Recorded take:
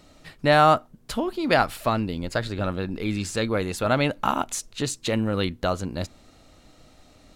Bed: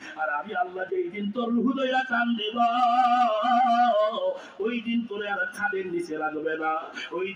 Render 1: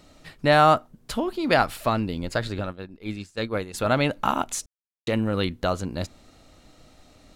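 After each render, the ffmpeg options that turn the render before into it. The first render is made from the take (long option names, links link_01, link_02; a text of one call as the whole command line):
ffmpeg -i in.wav -filter_complex "[0:a]asplit=3[link_01][link_02][link_03];[link_01]afade=type=out:start_time=2.6:duration=0.02[link_04];[link_02]agate=range=-33dB:threshold=-21dB:ratio=3:release=100:detection=peak,afade=type=in:start_time=2.6:duration=0.02,afade=type=out:start_time=3.73:duration=0.02[link_05];[link_03]afade=type=in:start_time=3.73:duration=0.02[link_06];[link_04][link_05][link_06]amix=inputs=3:normalize=0,asplit=3[link_07][link_08][link_09];[link_07]atrim=end=4.66,asetpts=PTS-STARTPTS,afade=type=out:start_time=4.656:duration=0.004:curve=hsin[link_10];[link_08]atrim=start=4.66:end=5.07,asetpts=PTS-STARTPTS,volume=0[link_11];[link_09]atrim=start=5.07,asetpts=PTS-STARTPTS,afade=type=in:duration=0.004:curve=hsin[link_12];[link_10][link_11][link_12]concat=n=3:v=0:a=1" out.wav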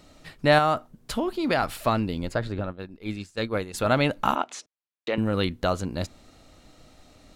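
ffmpeg -i in.wav -filter_complex "[0:a]asettb=1/sr,asplit=3[link_01][link_02][link_03];[link_01]atrim=end=0.584[link_04];[link_02]atrim=start=0.58:end=1.63,asetpts=PTS-STARTPTS,afade=type=in:duration=0.004:curve=qsin,afade=type=out:start_time=1.046:duration=0.004:curve=qsin,acompressor=threshold=-20dB:ratio=2.5:attack=3.2:release=140:knee=1:detection=peak[link_05];[link_03]atrim=start=1.626[link_06];[link_04][link_05]acrossfade=duration=0.004:curve1=hsin:curve2=qsin[link_07];[link_07][link_06]acrossfade=duration=0.004:curve1=qsin:curve2=hsin,asplit=3[link_08][link_09][link_10];[link_08]afade=type=out:start_time=2.31:duration=0.02[link_11];[link_09]highshelf=frequency=2500:gain=-11.5,afade=type=in:start_time=2.31:duration=0.02,afade=type=out:start_time=2.78:duration=0.02[link_12];[link_10]afade=type=in:start_time=2.78:duration=0.02[link_13];[link_11][link_12][link_13]amix=inputs=3:normalize=0,asettb=1/sr,asplit=3[link_14][link_15][link_16];[link_14]atrim=end=4.354[link_17];[link_15]atrim=start=4.35:end=5.18,asetpts=PTS-STARTPTS,afade=type=in:duration=0.004:curve=qsin,afade=type=out:start_time=0.826:duration=0.004:curve=qsin,highpass=340,lowpass=4100[link_18];[link_16]atrim=start=5.176[link_19];[link_17][link_18]acrossfade=duration=0.004:curve1=hsin:curve2=qsin[link_20];[link_20][link_19]acrossfade=duration=0.004:curve1=qsin:curve2=hsin" out.wav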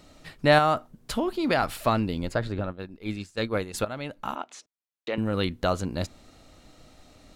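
ffmpeg -i in.wav -filter_complex "[0:a]asplit=2[link_01][link_02];[link_01]atrim=end=3.85,asetpts=PTS-STARTPTS,afade=type=out:start_time=3.846:duration=0.004:curve=hsin:silence=0.158489[link_03];[link_02]atrim=start=3.85,asetpts=PTS-STARTPTS,afade=type=in:duration=1.92:silence=0.158489[link_04];[link_03][link_04]concat=n=2:v=0:a=1" out.wav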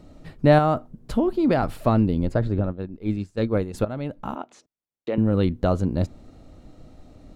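ffmpeg -i in.wav -af "tiltshelf=frequency=880:gain=8.5" out.wav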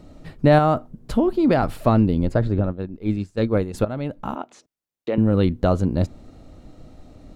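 ffmpeg -i in.wav -af "volume=2.5dB,alimiter=limit=-3dB:level=0:latency=1" out.wav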